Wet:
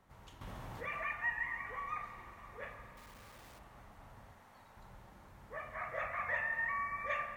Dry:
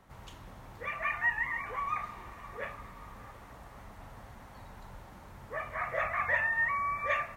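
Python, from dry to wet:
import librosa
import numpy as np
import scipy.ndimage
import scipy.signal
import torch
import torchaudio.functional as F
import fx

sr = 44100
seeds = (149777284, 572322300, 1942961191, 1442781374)

y = fx.clip_1bit(x, sr, at=(2.97, 3.59))
y = fx.low_shelf(y, sr, hz=250.0, db=-12.0, at=(4.33, 4.77))
y = fx.rev_spring(y, sr, rt60_s=2.1, pass_ms=(41,), chirp_ms=60, drr_db=7.0)
y = fx.env_flatten(y, sr, amount_pct=50, at=(0.41, 1.13))
y = y * librosa.db_to_amplitude(-7.5)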